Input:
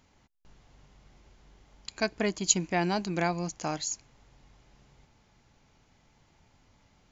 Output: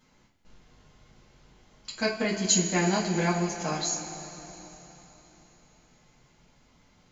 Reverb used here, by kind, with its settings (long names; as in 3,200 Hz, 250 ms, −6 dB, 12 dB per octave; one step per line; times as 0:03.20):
coupled-rooms reverb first 0.27 s, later 3.9 s, from −18 dB, DRR −6.5 dB
level −4.5 dB